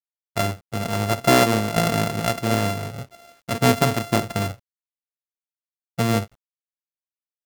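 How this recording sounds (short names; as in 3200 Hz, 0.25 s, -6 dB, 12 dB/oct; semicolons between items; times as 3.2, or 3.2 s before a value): a buzz of ramps at a fixed pitch in blocks of 64 samples; tremolo saw down 1.7 Hz, depth 50%; a quantiser's noise floor 10-bit, dither none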